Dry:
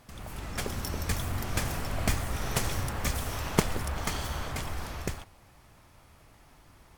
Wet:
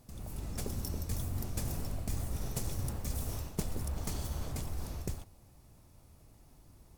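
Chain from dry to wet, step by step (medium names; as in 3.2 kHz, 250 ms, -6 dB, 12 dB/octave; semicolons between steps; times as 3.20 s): peaking EQ 1.7 kHz -14.5 dB 2.6 oct; band-stop 3.2 kHz, Q 21; reverse; compression 6:1, threshold -31 dBFS, peak gain reduction 12.5 dB; reverse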